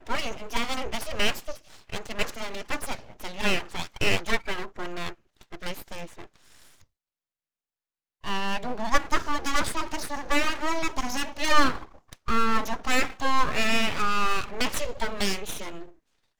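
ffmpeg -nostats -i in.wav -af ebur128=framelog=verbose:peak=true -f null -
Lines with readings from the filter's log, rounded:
Integrated loudness:
  I:         -28.2 LUFS
  Threshold: -39.0 LUFS
Loudness range:
  LRA:        11.6 LU
  Threshold: -49.1 LUFS
  LRA low:   -37.7 LUFS
  LRA high:  -26.1 LUFS
True peak:
  Peak:       -5.9 dBFS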